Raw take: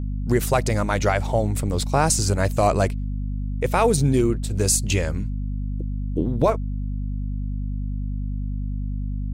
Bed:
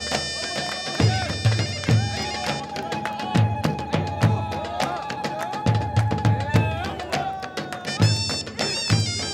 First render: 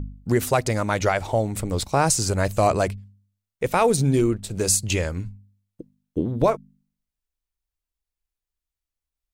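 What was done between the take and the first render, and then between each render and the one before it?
de-hum 50 Hz, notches 5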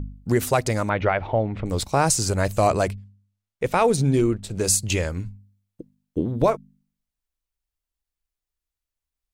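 0.89–1.66 s: low-pass 3 kHz 24 dB/octave; 2.93–4.64 s: treble shelf 9.7 kHz -9 dB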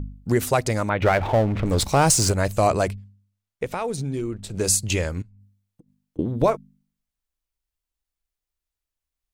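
1.02–2.32 s: power-law waveshaper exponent 0.7; 3.64–4.54 s: compression 2:1, threshold -30 dBFS; 5.22–6.19 s: compression 16:1, threshold -47 dBFS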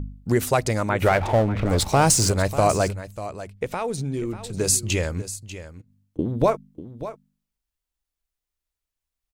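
delay 593 ms -13.5 dB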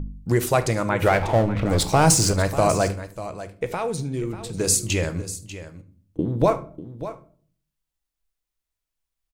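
delay 73 ms -21 dB; simulated room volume 460 m³, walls furnished, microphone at 0.65 m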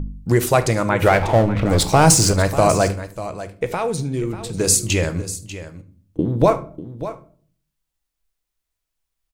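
trim +4 dB

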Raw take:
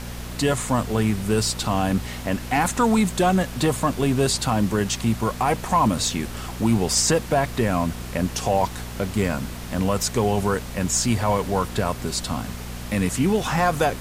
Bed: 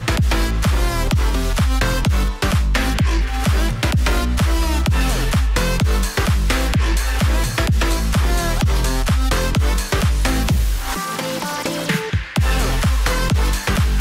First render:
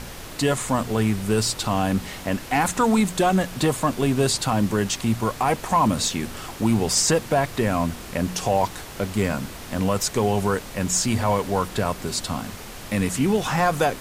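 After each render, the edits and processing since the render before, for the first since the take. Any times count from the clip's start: de-hum 60 Hz, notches 4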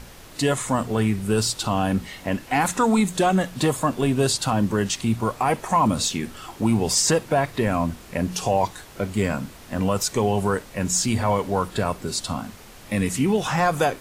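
noise print and reduce 7 dB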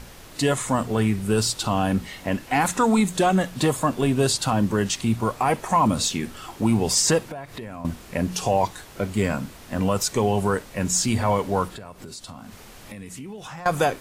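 7.23–7.85 s: compression, threshold -32 dBFS; 11.68–13.66 s: compression 5:1, threshold -36 dBFS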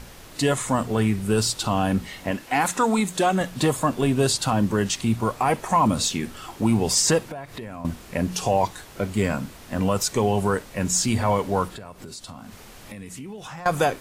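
2.31–3.41 s: bass shelf 160 Hz -9.5 dB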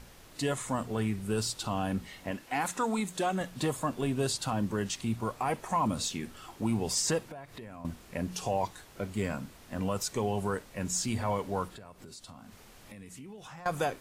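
trim -9.5 dB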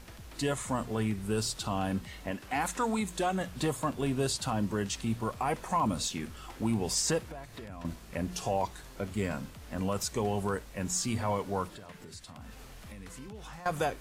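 add bed -33 dB

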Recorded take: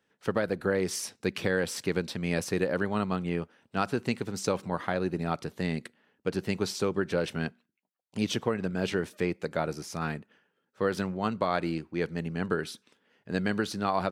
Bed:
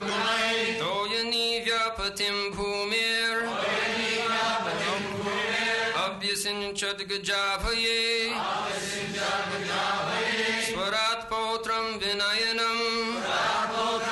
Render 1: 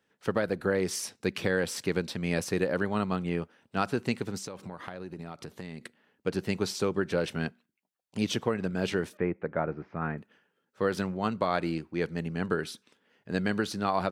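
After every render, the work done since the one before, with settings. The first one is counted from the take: 4.37–5.82 s: compression, threshold -36 dBFS; 9.17–10.18 s: low-pass 2 kHz 24 dB/octave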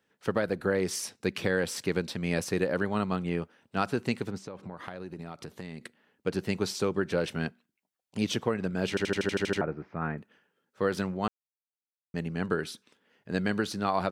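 4.30–4.77 s: low-pass 1.9 kHz 6 dB/octave; 8.89 s: stutter in place 0.08 s, 9 plays; 11.28–12.14 s: mute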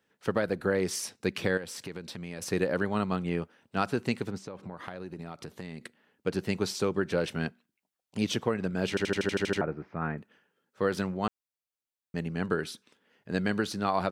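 1.57–2.42 s: compression 3:1, threshold -38 dBFS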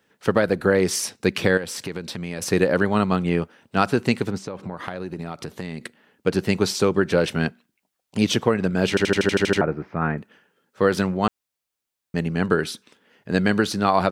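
trim +9 dB

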